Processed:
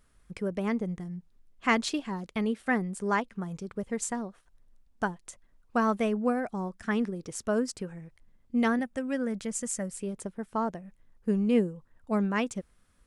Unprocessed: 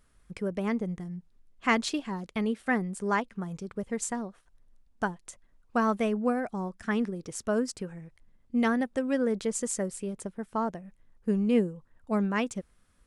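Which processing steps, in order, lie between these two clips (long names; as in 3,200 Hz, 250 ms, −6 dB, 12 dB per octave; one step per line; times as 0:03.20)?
0:08.79–0:09.96: graphic EQ with 15 bands 400 Hz −10 dB, 1,000 Hz −4 dB, 4,000 Hz −5 dB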